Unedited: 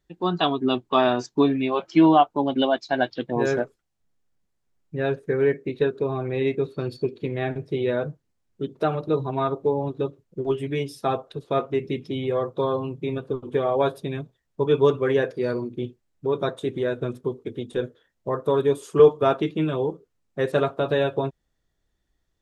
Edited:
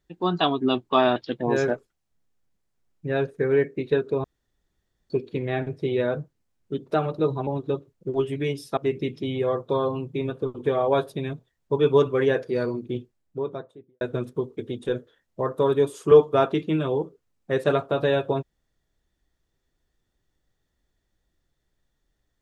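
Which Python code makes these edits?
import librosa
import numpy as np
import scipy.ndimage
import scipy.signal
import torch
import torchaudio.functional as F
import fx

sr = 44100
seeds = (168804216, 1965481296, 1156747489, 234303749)

y = fx.studio_fade_out(x, sr, start_s=15.83, length_s=1.06)
y = fx.edit(y, sr, fx.cut(start_s=1.16, length_s=1.89),
    fx.room_tone_fill(start_s=6.13, length_s=0.86),
    fx.cut(start_s=9.36, length_s=0.42),
    fx.cut(start_s=11.08, length_s=0.57), tone=tone)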